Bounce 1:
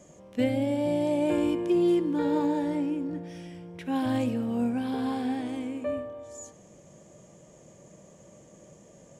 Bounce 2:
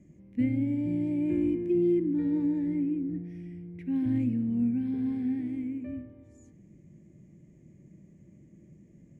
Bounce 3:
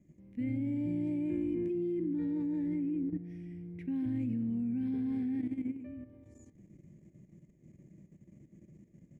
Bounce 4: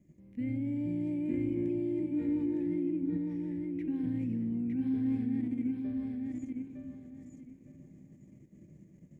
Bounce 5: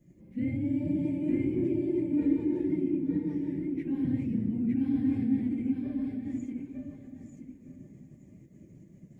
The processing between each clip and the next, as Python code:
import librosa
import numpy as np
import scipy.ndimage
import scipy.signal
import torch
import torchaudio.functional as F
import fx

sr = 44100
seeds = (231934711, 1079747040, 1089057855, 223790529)

y1 = fx.curve_eq(x, sr, hz=(160.0, 340.0, 490.0, 1300.0, 2100.0, 3200.0), db=(0, -3, -21, -27, -8, -24))
y1 = y1 * 10.0 ** (2.5 / 20.0)
y2 = fx.level_steps(y1, sr, step_db=11)
y3 = fx.echo_feedback(y2, sr, ms=909, feedback_pct=24, wet_db=-3.5)
y4 = fx.phase_scramble(y3, sr, seeds[0], window_ms=50)
y4 = y4 * 10.0 ** (3.5 / 20.0)